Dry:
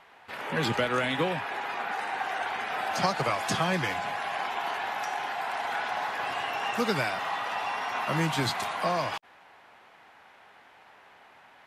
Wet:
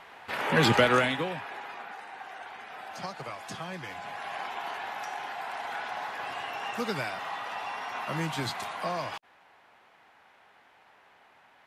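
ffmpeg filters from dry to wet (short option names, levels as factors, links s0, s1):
-af "volume=4.22,afade=t=out:st=0.91:d=0.28:silence=0.334965,afade=t=out:st=1.19:d=0.84:silence=0.421697,afade=t=in:st=3.82:d=0.5:silence=0.446684"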